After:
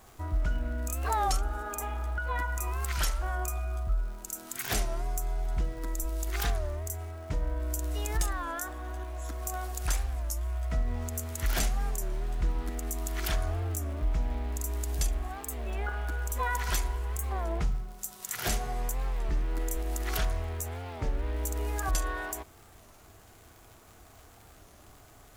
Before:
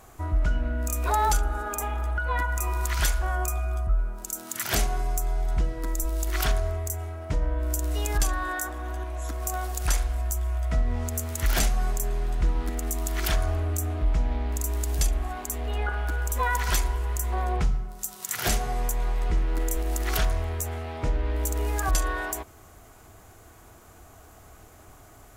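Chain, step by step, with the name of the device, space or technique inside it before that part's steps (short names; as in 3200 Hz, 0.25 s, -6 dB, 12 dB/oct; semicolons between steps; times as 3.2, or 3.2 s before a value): warped LP (record warp 33 1/3 rpm, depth 160 cents; crackle 150/s -40 dBFS; pink noise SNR 32 dB); gain -5 dB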